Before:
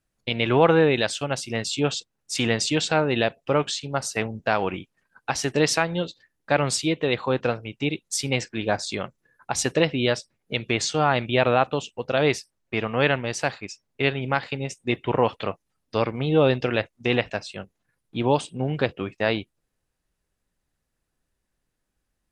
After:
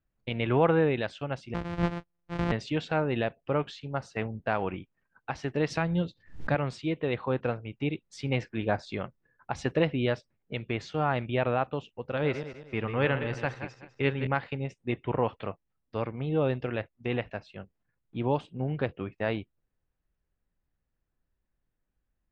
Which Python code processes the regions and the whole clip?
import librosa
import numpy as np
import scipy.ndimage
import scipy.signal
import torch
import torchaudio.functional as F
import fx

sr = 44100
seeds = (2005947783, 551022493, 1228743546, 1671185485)

y = fx.chain(x, sr, fx.sample_sort(block=256),
    fx.lowpass(hz=11000.0, slope=12), at=(1.54, 2.52))
y = fx.chain(y, sr, fx.bass_treble(bass_db=9, treble_db=8),
    fx.pre_swell(db_per_s=130.0), at=(5.7, 6.55))
y = fx.chain(y, sr, fx.reverse_delay_fb(ms=101, feedback_pct=52, wet_db=-9),
    fx.notch(hz=680.0, q=7.2), at=(12.03, 14.27))
y = scipy.signal.sosfilt(scipy.signal.butter(2, 2500.0, 'lowpass', fs=sr, output='sos'), y)
y = fx.low_shelf(y, sr, hz=140.0, db=7.0)
y = fx.rider(y, sr, range_db=10, speed_s=2.0)
y = y * 10.0 ** (-8.0 / 20.0)